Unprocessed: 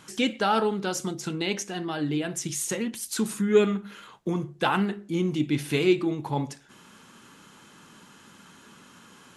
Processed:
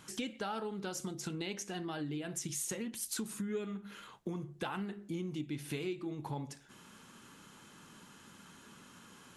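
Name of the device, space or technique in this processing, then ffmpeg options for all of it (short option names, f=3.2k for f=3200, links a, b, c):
ASMR close-microphone chain: -af "lowshelf=f=110:g=5.5,acompressor=threshold=-31dB:ratio=5,highshelf=f=10k:g=5,volume=-5.5dB"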